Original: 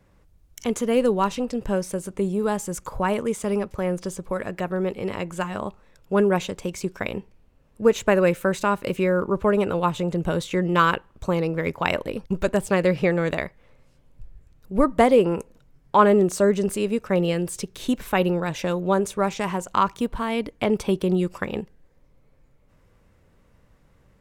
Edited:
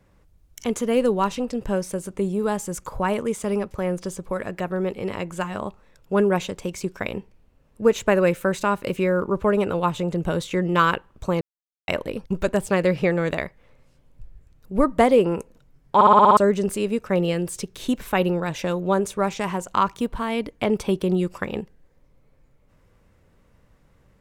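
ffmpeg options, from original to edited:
ffmpeg -i in.wav -filter_complex "[0:a]asplit=10[link_01][link_02][link_03][link_04][link_05][link_06][link_07][link_08][link_09][link_10];[link_01]atrim=end=11.41,asetpts=PTS-STARTPTS,afade=type=out:start_time=11.406:duration=0.004:curve=hsin[link_11];[link_02]atrim=start=11.41:end=11.88,asetpts=PTS-STARTPTS,volume=0[link_12];[link_03]atrim=start=11.88:end=16.012,asetpts=PTS-STARTPTS,afade=type=in:duration=0.004:curve=hsin[link_13];[link_04]atrim=start=15.948:end=16.012[link_14];[link_05]atrim=start=15.948:end=16.012[link_15];[link_06]atrim=start=15.948:end=16.012[link_16];[link_07]atrim=start=15.948:end=16.012[link_17];[link_08]atrim=start=15.948:end=16.012[link_18];[link_09]atrim=start=15.948:end=16.012[link_19];[link_10]atrim=start=16.368[link_20];[link_11][link_12][link_13]concat=n=3:v=0:a=1[link_21];[link_21][link_14]acrossfade=duration=0.004:curve1=hsin:curve2=hsin[link_22];[link_22][link_15]acrossfade=duration=0.004:curve1=hsin:curve2=hsin[link_23];[link_23][link_16]acrossfade=duration=0.004:curve1=hsin:curve2=hsin[link_24];[link_24][link_17]acrossfade=duration=0.004:curve1=hsin:curve2=hsin[link_25];[link_25][link_18]acrossfade=duration=0.004:curve1=hsin:curve2=hsin[link_26];[link_26][link_19]acrossfade=duration=0.004:curve1=hsin:curve2=hsin[link_27];[link_27][link_20]acrossfade=duration=0.004:curve1=hsin:curve2=hsin" out.wav

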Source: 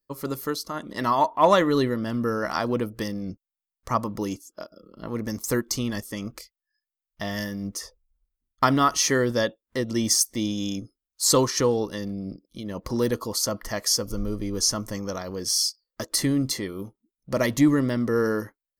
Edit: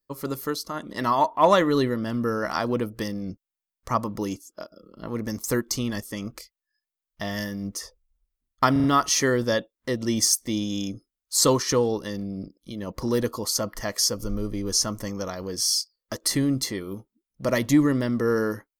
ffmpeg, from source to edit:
ffmpeg -i in.wav -filter_complex "[0:a]asplit=4[link_01][link_02][link_03][link_04];[link_01]atrim=end=8.762[link_05];[link_02]atrim=start=8.718:end=8.762[link_06];[link_03]atrim=start=8.718:end=8.762[link_07];[link_04]atrim=start=8.718[link_08];[link_05][link_06]acrossfade=duration=0.004:curve1=hsin:curve2=hsin[link_09];[link_09][link_07]acrossfade=duration=0.004:curve1=hsin:curve2=hsin[link_10];[link_10][link_08]acrossfade=duration=0.004:curve1=hsin:curve2=hsin" out.wav

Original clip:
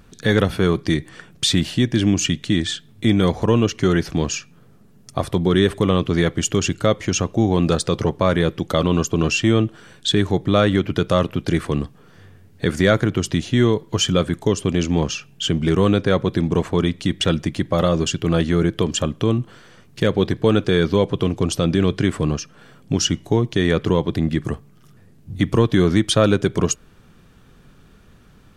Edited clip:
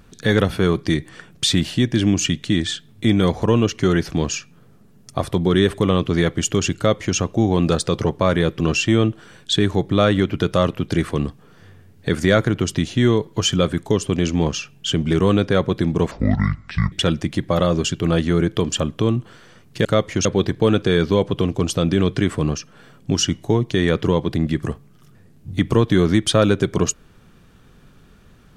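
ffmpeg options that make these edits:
ffmpeg -i in.wav -filter_complex "[0:a]asplit=6[link_01][link_02][link_03][link_04][link_05][link_06];[link_01]atrim=end=8.602[link_07];[link_02]atrim=start=9.158:end=16.674[link_08];[link_03]atrim=start=16.67:end=17.14,asetpts=PTS-STARTPTS,asetrate=25578,aresample=44100,atrim=end_sample=35736,asetpts=PTS-STARTPTS[link_09];[link_04]atrim=start=17.136:end=20.072[link_10];[link_05]atrim=start=6.768:end=7.172[link_11];[link_06]atrim=start=20.068[link_12];[link_07][link_08]acrossfade=duration=0.004:curve1=hsin:curve2=hsin[link_13];[link_13][link_09]acrossfade=duration=0.004:curve1=hsin:curve2=hsin[link_14];[link_14][link_10]acrossfade=duration=0.004:curve1=hsin:curve2=hsin[link_15];[link_15][link_11]acrossfade=duration=0.004:curve1=hsin:curve2=hsin[link_16];[link_16][link_12]acrossfade=duration=0.004:curve1=hsin:curve2=hsin" out.wav

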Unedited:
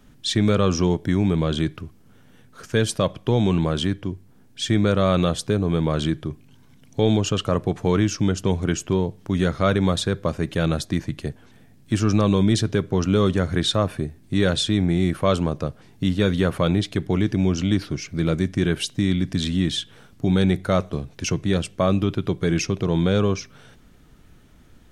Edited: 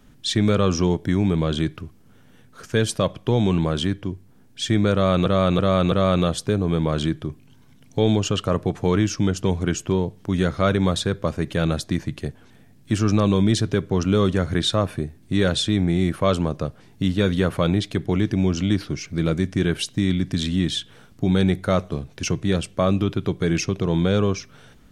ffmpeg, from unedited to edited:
ffmpeg -i in.wav -filter_complex "[0:a]asplit=4[link_01][link_02][link_03][link_04];[link_01]atrim=end=5.262[link_05];[link_02]atrim=start=4.928:end=5.262[link_06];[link_03]atrim=start=4.928:end=5.262[link_07];[link_04]atrim=start=4.928[link_08];[link_05][link_06]acrossfade=duration=0.004:curve1=hsin:curve2=hsin[link_09];[link_09][link_07]acrossfade=duration=0.004:curve1=hsin:curve2=hsin[link_10];[link_10][link_08]acrossfade=duration=0.004:curve1=hsin:curve2=hsin" out.wav

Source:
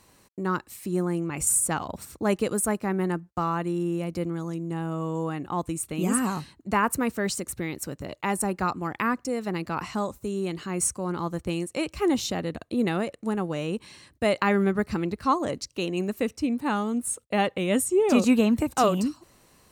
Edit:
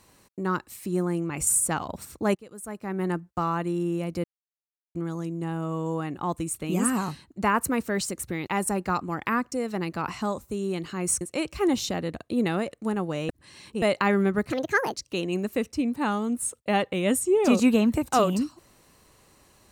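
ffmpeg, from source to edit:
ffmpeg -i in.wav -filter_complex "[0:a]asplit=9[link_01][link_02][link_03][link_04][link_05][link_06][link_07][link_08][link_09];[link_01]atrim=end=2.35,asetpts=PTS-STARTPTS,afade=type=out:start_time=2.346:duration=0.004:curve=hsin:silence=0.0841395[link_10];[link_02]atrim=start=2.35:end=4.24,asetpts=PTS-STARTPTS,afade=type=in:duration=0.75:curve=qua:silence=0.0841395,afade=type=out:start_time=1.886:duration=0.004:curve=hsin,apad=pad_dur=0.71[link_11];[link_03]atrim=start=4.24:end=7.762,asetpts=PTS-STARTPTS,afade=type=in:duration=0.004:curve=hsin[link_12];[link_04]atrim=start=8.198:end=10.942[link_13];[link_05]atrim=start=11.618:end=13.702[link_14];[link_06]atrim=start=13.698:end=14.232,asetpts=PTS-STARTPTS,areverse[link_15];[link_07]atrim=start=14.228:end=14.914[link_16];[link_08]atrim=start=14.91:end=15.59,asetpts=PTS-STARTPTS,asetrate=67473,aresample=44100[link_17];[link_09]atrim=start=15.586[link_18];[link_10][link_11][link_12]concat=n=3:v=0:a=1[link_19];[link_19][link_13]acrossfade=duration=0.004:curve1=hsin:curve2=hsin[link_20];[link_20][link_14]acrossfade=duration=0.004:curve1=hsin:curve2=hsin[link_21];[link_21][link_15]acrossfade=duration=0.004:curve1=hsin:curve2=hsin[link_22];[link_22][link_16]acrossfade=duration=0.004:curve1=hsin:curve2=hsin[link_23];[link_23][link_17]acrossfade=duration=0.004:curve1=hsin:curve2=hsin[link_24];[link_24][link_18]acrossfade=duration=0.004:curve1=hsin:curve2=hsin" out.wav

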